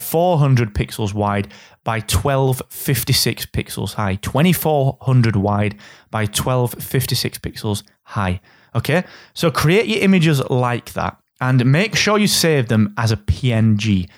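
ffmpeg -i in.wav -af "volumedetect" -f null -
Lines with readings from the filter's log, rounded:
mean_volume: -17.6 dB
max_volume: -2.3 dB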